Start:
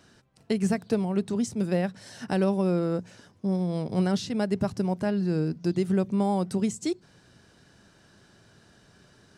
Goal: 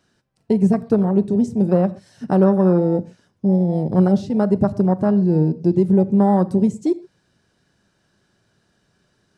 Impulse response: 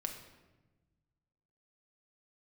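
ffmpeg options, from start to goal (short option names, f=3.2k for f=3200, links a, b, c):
-filter_complex "[0:a]acontrast=38,afwtdn=0.0562,asplit=2[a][b];[1:a]atrim=start_sample=2205,atrim=end_sample=6174[c];[b][c]afir=irnorm=-1:irlink=0,volume=-6.5dB[d];[a][d]amix=inputs=2:normalize=0,volume=1dB"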